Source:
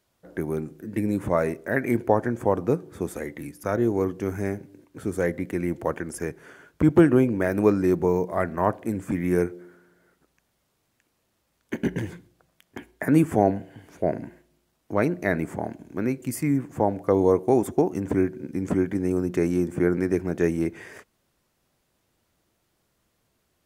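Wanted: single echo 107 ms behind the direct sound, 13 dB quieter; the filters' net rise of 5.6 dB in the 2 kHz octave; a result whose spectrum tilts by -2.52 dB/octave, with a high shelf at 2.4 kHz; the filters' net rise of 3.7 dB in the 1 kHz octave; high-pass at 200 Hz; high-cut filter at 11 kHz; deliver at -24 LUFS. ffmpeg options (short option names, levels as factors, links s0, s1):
-af "highpass=200,lowpass=11000,equalizer=f=1000:t=o:g=3.5,equalizer=f=2000:t=o:g=4,highshelf=f=2400:g=4,aecho=1:1:107:0.224,volume=1.06"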